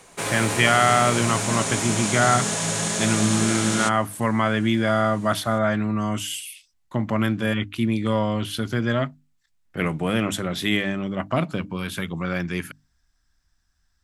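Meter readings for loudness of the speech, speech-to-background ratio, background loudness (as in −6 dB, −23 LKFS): −23.5 LKFS, 1.0 dB, −24.5 LKFS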